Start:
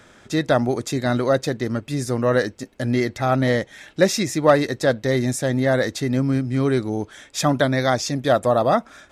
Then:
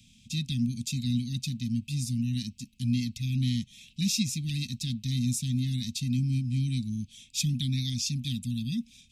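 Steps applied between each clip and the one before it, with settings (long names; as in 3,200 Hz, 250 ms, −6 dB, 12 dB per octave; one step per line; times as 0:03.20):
Chebyshev band-stop filter 240–2,500 Hz, order 5
level −3 dB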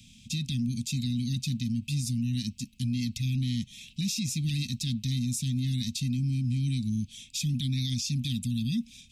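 brickwall limiter −27 dBFS, peak gain reduction 11.5 dB
level +4.5 dB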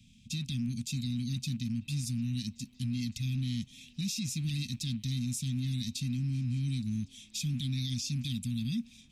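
loose part that buzzes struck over −31 dBFS, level −45 dBFS
echo through a band-pass that steps 376 ms, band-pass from 530 Hz, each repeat 0.7 octaves, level −10 dB
one half of a high-frequency compander decoder only
level −4 dB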